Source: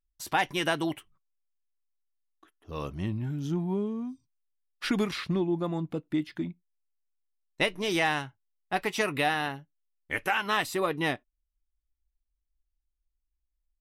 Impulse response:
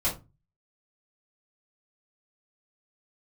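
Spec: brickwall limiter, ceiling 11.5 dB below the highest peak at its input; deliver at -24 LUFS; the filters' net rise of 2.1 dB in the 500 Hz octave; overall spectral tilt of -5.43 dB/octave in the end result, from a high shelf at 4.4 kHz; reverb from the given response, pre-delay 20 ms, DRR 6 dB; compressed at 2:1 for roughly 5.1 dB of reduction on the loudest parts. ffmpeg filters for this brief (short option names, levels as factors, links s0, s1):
-filter_complex "[0:a]equalizer=f=500:t=o:g=3,highshelf=f=4400:g=-8,acompressor=threshold=0.0282:ratio=2,alimiter=level_in=1.88:limit=0.0631:level=0:latency=1,volume=0.531,asplit=2[s0][s1];[1:a]atrim=start_sample=2205,adelay=20[s2];[s1][s2]afir=irnorm=-1:irlink=0,volume=0.188[s3];[s0][s3]amix=inputs=2:normalize=0,volume=5.01"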